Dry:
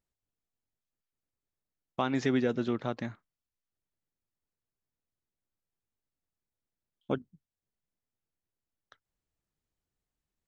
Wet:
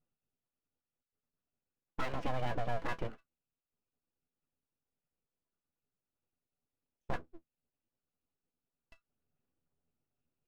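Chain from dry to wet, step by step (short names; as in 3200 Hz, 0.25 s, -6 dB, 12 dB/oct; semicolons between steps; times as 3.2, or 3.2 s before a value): octave resonator E, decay 0.1 s; limiter -35.5 dBFS, peak gain reduction 6 dB; full-wave rectifier; gain +12 dB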